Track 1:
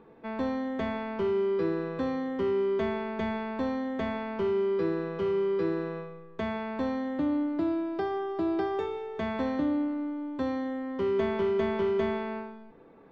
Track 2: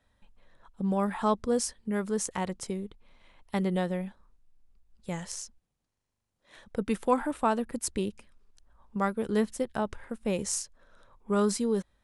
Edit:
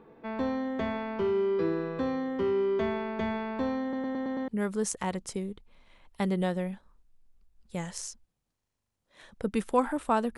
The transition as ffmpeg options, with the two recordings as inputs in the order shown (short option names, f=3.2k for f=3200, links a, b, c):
-filter_complex "[0:a]apad=whole_dur=10.37,atrim=end=10.37,asplit=6[a][b][c][d][e][f];[a]atrim=end=3.932[g];[b]atrim=start=3.818:end=3.932[h];[c]atrim=start=3.818:end=3.932[i];[d]atrim=start=3.818:end=3.932[j];[e]atrim=start=3.818:end=3.932[k];[f]atrim=start=3.818:end=3.932[l];[1:a]atrim=start=1.818:end=7.71[m];[g][h]acrossfade=d=0.004:c1=hsin:c2=hsin[n];[n][i]acrossfade=d=0.004:c1=hsin:c2=hsin[o];[o][j]acrossfade=d=0.004:c1=hsin:c2=hsin[p];[p][k]acrossfade=d=0.004:c1=hsin:c2=hsin[q];[q][l]acrossfade=d=0.004:c1=hsin:c2=hsin[r];[r][m]acrossfade=d=0.004:c1=hsin:c2=hsin"